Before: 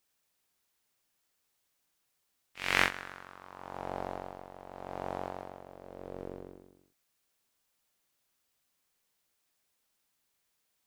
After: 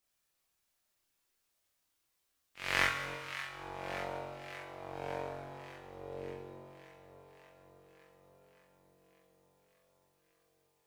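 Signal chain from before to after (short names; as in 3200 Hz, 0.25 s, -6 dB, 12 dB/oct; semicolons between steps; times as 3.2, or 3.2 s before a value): echo with dull and thin repeats by turns 0.289 s, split 870 Hz, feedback 82%, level -10 dB; chorus voices 6, 0.2 Hz, delay 29 ms, depth 1.8 ms; Schroeder reverb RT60 1.6 s, combs from 28 ms, DRR 6 dB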